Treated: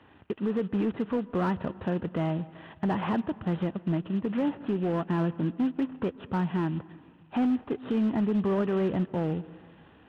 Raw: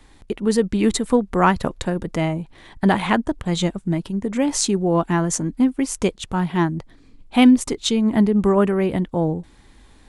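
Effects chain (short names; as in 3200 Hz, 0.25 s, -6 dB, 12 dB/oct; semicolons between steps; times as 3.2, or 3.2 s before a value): CVSD 16 kbps; HPF 83 Hz 24 dB/oct; bell 2200 Hz -11.5 dB 0.21 oct; in parallel at +1 dB: compressor 6:1, threshold -27 dBFS, peak gain reduction 16.5 dB; on the sum: limiter -11.5 dBFS, peak gain reduction 7 dB; hard clip -13.5 dBFS, distortion -24 dB; on a send at -18 dB: air absorption 230 m + reverb RT60 1.6 s, pre-delay 0.12 s; on the sum: gain -8 dB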